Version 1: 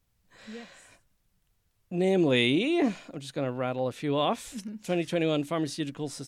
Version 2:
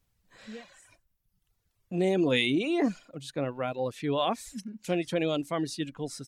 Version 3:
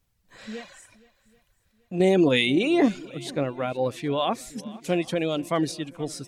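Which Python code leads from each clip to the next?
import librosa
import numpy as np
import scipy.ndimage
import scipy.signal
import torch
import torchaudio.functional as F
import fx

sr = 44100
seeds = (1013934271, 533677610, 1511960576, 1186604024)

y1 = fx.dereverb_blind(x, sr, rt60_s=1.0)
y2 = fx.tremolo_random(y1, sr, seeds[0], hz=3.5, depth_pct=55)
y2 = fx.echo_swing(y2, sr, ms=782, ratio=1.5, feedback_pct=32, wet_db=-21)
y2 = y2 * librosa.db_to_amplitude(7.5)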